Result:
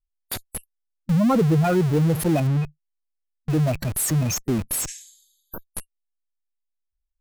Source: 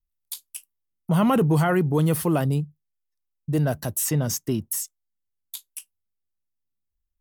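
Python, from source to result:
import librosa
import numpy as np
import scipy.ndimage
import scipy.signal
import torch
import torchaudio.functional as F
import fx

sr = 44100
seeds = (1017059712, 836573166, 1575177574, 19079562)

p1 = fx.rattle_buzz(x, sr, strikes_db=-29.0, level_db=-16.0)
p2 = fx.spec_gate(p1, sr, threshold_db=-10, keep='strong')
p3 = fx.schmitt(p2, sr, flips_db=-38.0)
p4 = p2 + (p3 * librosa.db_to_amplitude(-4.0))
p5 = fx.high_shelf(p4, sr, hz=5300.0, db=-10.0, at=(2.47, 3.5))
y = fx.spec_repair(p5, sr, seeds[0], start_s=4.91, length_s=0.69, low_hz=1600.0, high_hz=12000.0, source='both')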